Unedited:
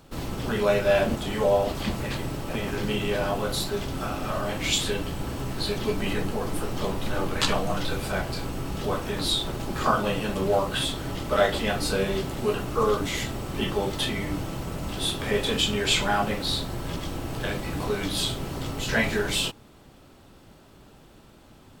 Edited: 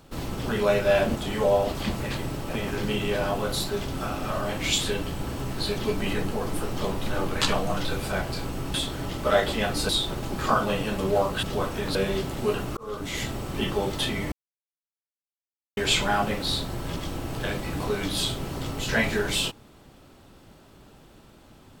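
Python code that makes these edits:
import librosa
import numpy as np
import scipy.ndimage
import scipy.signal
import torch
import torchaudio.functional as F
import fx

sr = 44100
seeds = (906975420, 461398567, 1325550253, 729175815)

y = fx.edit(x, sr, fx.swap(start_s=8.74, length_s=0.52, other_s=10.8, other_length_s=1.15),
    fx.fade_in_span(start_s=12.77, length_s=0.48),
    fx.silence(start_s=14.32, length_s=1.45), tone=tone)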